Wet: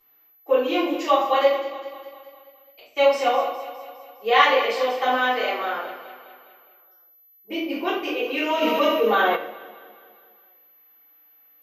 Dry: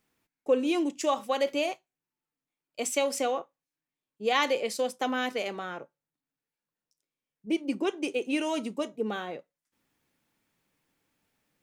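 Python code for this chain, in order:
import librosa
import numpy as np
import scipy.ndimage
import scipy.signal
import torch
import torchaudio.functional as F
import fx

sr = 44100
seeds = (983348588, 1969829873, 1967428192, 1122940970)

y = scipy.signal.sosfilt(scipy.signal.butter(2, 700.0, 'highpass', fs=sr, output='sos'), x)
y = y + 10.0 ** (-39.0 / 20.0) * np.sin(2.0 * np.pi * 12000.0 * np.arange(len(y)) / sr)
y = fx.gate_flip(y, sr, shuts_db=-33.0, range_db=-30, at=(1.54, 2.95), fade=0.02)
y = fx.air_absorb(y, sr, metres=210.0)
y = fx.echo_feedback(y, sr, ms=205, feedback_pct=56, wet_db=-13.0)
y = fx.room_shoebox(y, sr, seeds[0], volume_m3=87.0, walls='mixed', distance_m=3.3)
y = fx.env_flatten(y, sr, amount_pct=50, at=(8.61, 9.35), fade=0.02)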